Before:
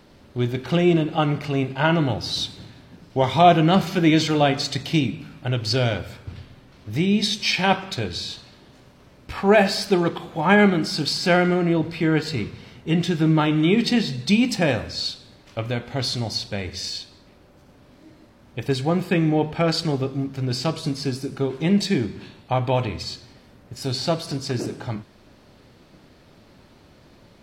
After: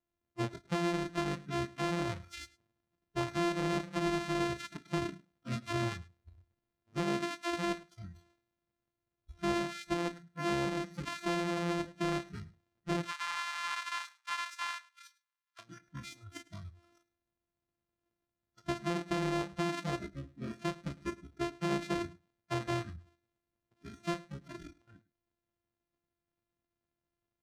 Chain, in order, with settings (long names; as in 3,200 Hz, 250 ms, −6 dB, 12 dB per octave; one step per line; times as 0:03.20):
samples sorted by size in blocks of 128 samples
noise reduction from a noise print of the clip's start 29 dB
0:13.05–0:15.59: Butterworth high-pass 930 Hz 48 dB per octave
downward compressor 6 to 1, threshold −20 dBFS, peak gain reduction 11 dB
hard clipping −15.5 dBFS, distortion −24 dB
high-frequency loss of the air 70 metres
single-tap delay 105 ms −21 dB
level −9 dB